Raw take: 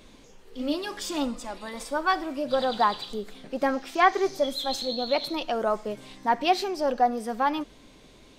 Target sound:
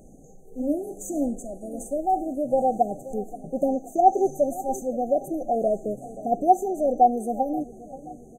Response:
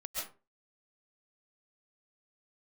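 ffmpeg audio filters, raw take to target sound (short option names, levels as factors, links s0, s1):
-filter_complex "[0:a]equalizer=f=160:t=o:w=0.33:g=11,equalizer=f=800:t=o:w=0.33:g=5,equalizer=f=5000:t=o:w=0.33:g=-9,asplit=2[s0][s1];[s1]adelay=529,lowpass=f=1100:p=1,volume=0.158,asplit=2[s2][s3];[s3]adelay=529,lowpass=f=1100:p=1,volume=0.53,asplit=2[s4][s5];[s5]adelay=529,lowpass=f=1100:p=1,volume=0.53,asplit=2[s6][s7];[s7]adelay=529,lowpass=f=1100:p=1,volume=0.53,asplit=2[s8][s9];[s9]adelay=529,lowpass=f=1100:p=1,volume=0.53[s10];[s0][s2][s4][s6][s8][s10]amix=inputs=6:normalize=0,afftfilt=real='re*(1-between(b*sr/4096,800,6000))':imag='im*(1-between(b*sr/4096,800,6000))':win_size=4096:overlap=0.75,volume=1.33"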